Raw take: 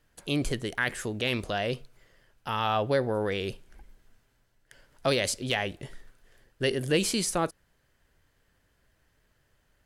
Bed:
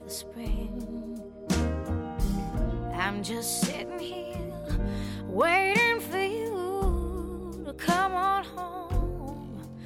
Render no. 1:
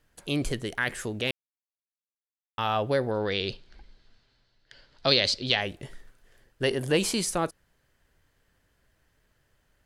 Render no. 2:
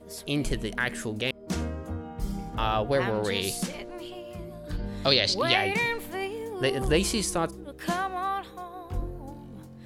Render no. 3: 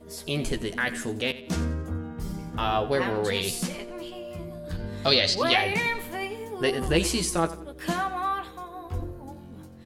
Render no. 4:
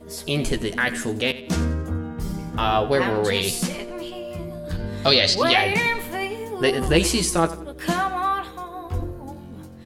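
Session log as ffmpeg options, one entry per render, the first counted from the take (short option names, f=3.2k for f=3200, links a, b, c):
-filter_complex "[0:a]asettb=1/sr,asplit=3[a][b][c];[a]atrim=end=3.114[d];[b]atrim=start=3.11:end=5.61,asetpts=PTS-STARTPTS,afade=t=in:d=0.004:c=qsin,afade=t=out:st=2.496:d=0.004:c=qsin,lowpass=f=4.3k:t=q:w=4.5[e];[c]atrim=start=5.606[f];[d][e]acrossfade=d=0.004:c1=hsin:c2=qsin[g];[g][f]acrossfade=d=0.004:c1=qsin:c2=hsin,asettb=1/sr,asplit=3[h][i][j];[h]atrim=end=6.634[k];[i]atrim=start=6.63:end=7.21,asetpts=PTS-STARTPTS,afade=t=in:d=0.004:c=qsin,afade=t=out:st=0.576:d=0.004:c=qsin,equalizer=f=890:w=1.7:g=8[l];[j]atrim=start=7.206[m];[k][l]acrossfade=d=0.004:c1=hsin:c2=qsin[n];[n][m]acrossfade=d=0.004:c1=qsin:c2=hsin,asplit=3[o][p][q];[o]atrim=end=1.31,asetpts=PTS-STARTPTS,afade=t=out:st=1.306:d=0.004:c=hsin[r];[p]atrim=start=1.31:end=2.58,asetpts=PTS-STARTPTS,volume=0[s];[q]atrim=start=2.58,asetpts=PTS-STARTPTS,afade=t=in:d=0.004:c=hsin[t];[r][s][t]concat=n=3:v=0:a=1"
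-filter_complex "[1:a]volume=-4dB[a];[0:a][a]amix=inputs=2:normalize=0"
-filter_complex "[0:a]asplit=2[a][b];[b]adelay=12,volume=-5dB[c];[a][c]amix=inputs=2:normalize=0,aecho=1:1:89|178|267:0.168|0.0621|0.023"
-af "volume=5dB,alimiter=limit=-3dB:level=0:latency=1"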